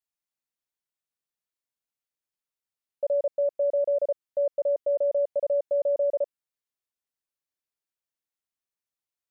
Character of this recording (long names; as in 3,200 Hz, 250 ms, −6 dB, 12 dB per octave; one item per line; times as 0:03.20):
background noise floor −92 dBFS
spectral slope −3.0 dB per octave